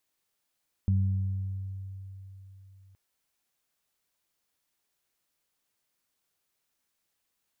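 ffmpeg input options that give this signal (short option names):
-f lavfi -i "aevalsrc='0.0891*pow(10,-3*t/3.72)*sin(2*PI*96.3*t)+0.0355*pow(10,-3*t/1.67)*sin(2*PI*192.6*t)':d=2.07:s=44100"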